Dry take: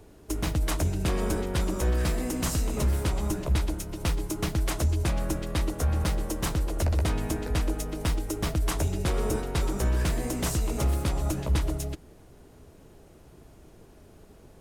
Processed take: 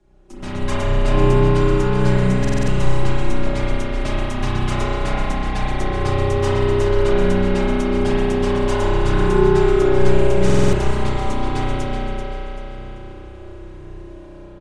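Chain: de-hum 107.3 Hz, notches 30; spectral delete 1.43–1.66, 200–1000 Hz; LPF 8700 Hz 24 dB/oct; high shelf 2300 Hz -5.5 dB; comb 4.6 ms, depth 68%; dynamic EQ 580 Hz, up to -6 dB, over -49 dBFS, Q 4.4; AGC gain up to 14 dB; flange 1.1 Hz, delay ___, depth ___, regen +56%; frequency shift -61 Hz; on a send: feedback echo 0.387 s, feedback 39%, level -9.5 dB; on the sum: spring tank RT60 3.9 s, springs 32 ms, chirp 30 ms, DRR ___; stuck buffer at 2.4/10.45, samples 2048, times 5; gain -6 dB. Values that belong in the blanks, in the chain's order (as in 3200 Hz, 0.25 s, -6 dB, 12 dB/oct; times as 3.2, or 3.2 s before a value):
0.5 ms, 2.6 ms, -8.5 dB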